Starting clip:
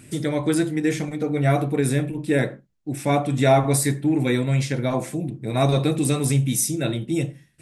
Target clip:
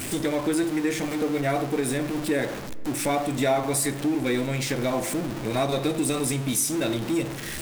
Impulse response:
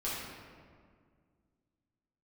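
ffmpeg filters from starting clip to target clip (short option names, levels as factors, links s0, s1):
-filter_complex "[0:a]aeval=exprs='val(0)+0.5*0.0473*sgn(val(0))':c=same,equalizer=f=140:w=1.7:g=-10.5,acompressor=threshold=0.0562:ratio=2,asplit=2[s0][s1];[1:a]atrim=start_sample=2205[s2];[s1][s2]afir=irnorm=-1:irlink=0,volume=0.112[s3];[s0][s3]amix=inputs=2:normalize=0"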